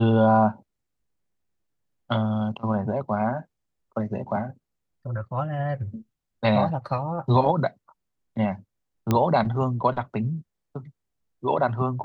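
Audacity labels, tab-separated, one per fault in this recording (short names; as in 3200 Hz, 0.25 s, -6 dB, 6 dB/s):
9.110000	9.110000	pop -9 dBFS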